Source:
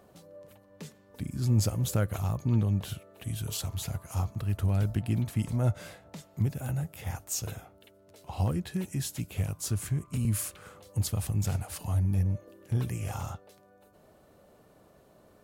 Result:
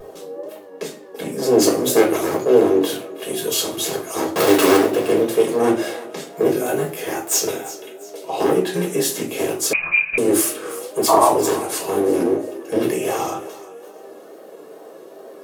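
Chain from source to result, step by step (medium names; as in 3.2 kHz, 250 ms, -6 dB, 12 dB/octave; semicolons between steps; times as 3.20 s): one-sided wavefolder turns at -27 dBFS; 11.08–11.29 s: painted sound noise 580–1200 Hz -29 dBFS; AM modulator 250 Hz, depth 25%; 4.28–4.76 s: companded quantiser 2-bit; ladder high-pass 310 Hz, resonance 55%; wow and flutter 93 cents; 6.33–6.93 s: doubling 19 ms -4 dB; thinning echo 347 ms, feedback 36%, high-pass 470 Hz, level -16 dB; reverberation RT60 0.40 s, pre-delay 4 ms, DRR -2 dB; 9.73–10.18 s: frequency inversion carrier 2.8 kHz; loudness maximiser +22 dB; endings held to a fixed fall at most 330 dB/s; trim -1 dB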